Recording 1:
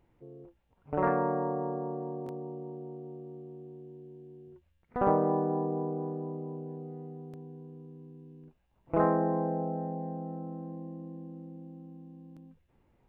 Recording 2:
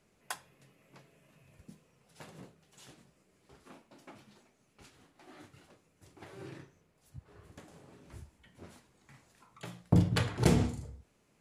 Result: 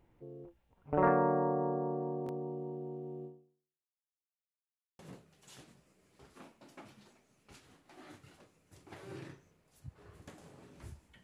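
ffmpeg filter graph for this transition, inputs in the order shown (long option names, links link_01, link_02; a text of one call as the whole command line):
ffmpeg -i cue0.wav -i cue1.wav -filter_complex "[0:a]apad=whole_dur=11.23,atrim=end=11.23,asplit=2[link_01][link_02];[link_01]atrim=end=4.11,asetpts=PTS-STARTPTS,afade=type=out:start_time=3.25:duration=0.86:curve=exp[link_03];[link_02]atrim=start=4.11:end=4.99,asetpts=PTS-STARTPTS,volume=0[link_04];[1:a]atrim=start=2.29:end=8.53,asetpts=PTS-STARTPTS,afade=type=in:duration=0.004:curve=hsin[link_05];[link_03][link_04][link_05]concat=n=3:v=0:a=1" out.wav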